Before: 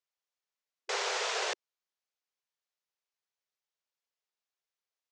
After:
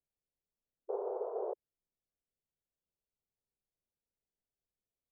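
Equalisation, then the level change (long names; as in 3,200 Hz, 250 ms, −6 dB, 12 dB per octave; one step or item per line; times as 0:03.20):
Gaussian smoothing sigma 13 samples
spectral tilt −3 dB per octave
+2.5 dB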